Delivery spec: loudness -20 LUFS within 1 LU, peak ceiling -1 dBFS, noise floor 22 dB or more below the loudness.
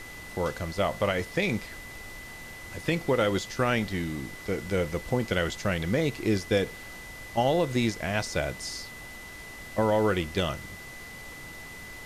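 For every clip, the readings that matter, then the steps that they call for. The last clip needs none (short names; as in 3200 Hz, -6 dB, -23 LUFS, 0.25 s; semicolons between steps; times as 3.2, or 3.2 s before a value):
steady tone 2000 Hz; tone level -43 dBFS; noise floor -43 dBFS; noise floor target -51 dBFS; loudness -28.5 LUFS; peak -13.0 dBFS; loudness target -20.0 LUFS
-> notch 2000 Hz, Q 30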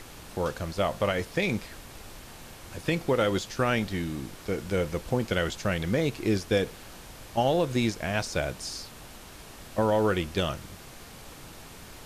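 steady tone none; noise floor -47 dBFS; noise floor target -51 dBFS
-> noise print and reduce 6 dB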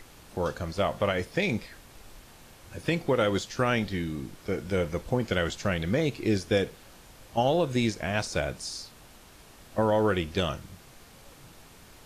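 noise floor -53 dBFS; loudness -28.5 LUFS; peak -13.0 dBFS; loudness target -20.0 LUFS
-> gain +8.5 dB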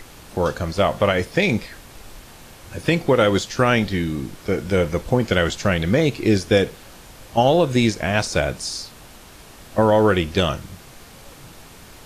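loudness -20.0 LUFS; peak -4.5 dBFS; noise floor -44 dBFS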